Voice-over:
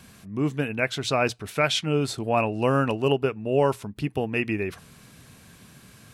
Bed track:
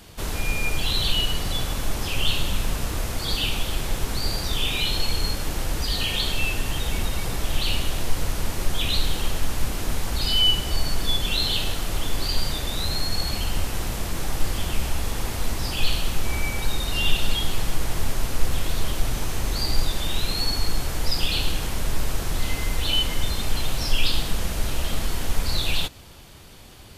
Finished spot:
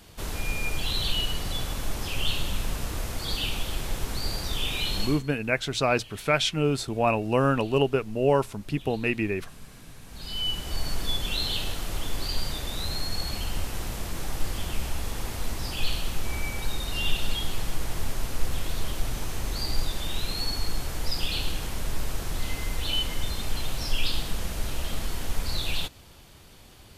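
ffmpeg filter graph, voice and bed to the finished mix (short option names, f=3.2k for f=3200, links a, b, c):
-filter_complex "[0:a]adelay=4700,volume=-0.5dB[a];[1:a]volume=14dB,afade=t=out:st=5.03:d=0.2:silence=0.112202,afade=t=in:st=10.04:d=0.86:silence=0.11885[b];[a][b]amix=inputs=2:normalize=0"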